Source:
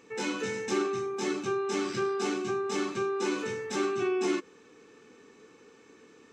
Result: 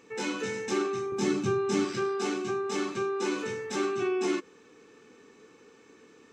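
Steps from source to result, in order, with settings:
0:01.12–0:01.85: bass and treble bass +14 dB, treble +2 dB

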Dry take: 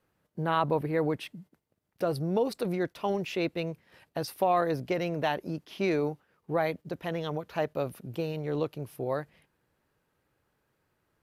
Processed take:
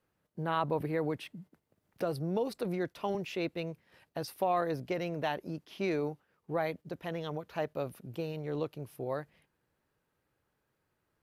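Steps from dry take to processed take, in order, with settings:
0:00.80–0:03.15: multiband upward and downward compressor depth 40%
level −4.5 dB

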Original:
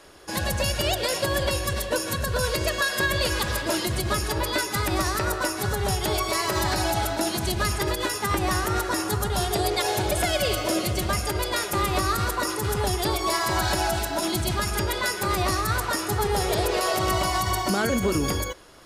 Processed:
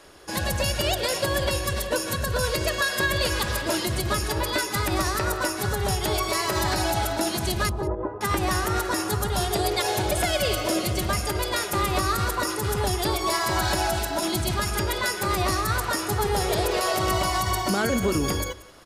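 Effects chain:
0:07.69–0:08.21: low-pass filter 1,000 Hz 24 dB per octave
on a send: single-tap delay 182 ms −19.5 dB

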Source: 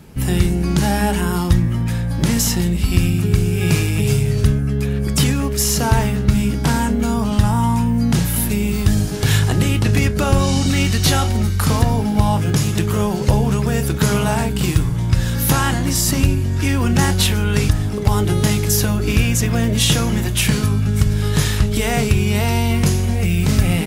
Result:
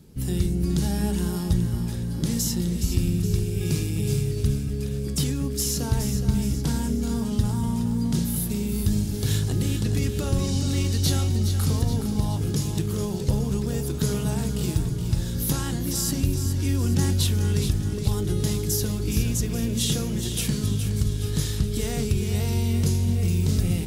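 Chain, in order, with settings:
flat-topped bell 1,300 Hz −9 dB 2.5 octaves
on a send: echo with a time of its own for lows and highs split 340 Hz, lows 227 ms, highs 419 ms, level −8.5 dB
on the sum: level −8 dB

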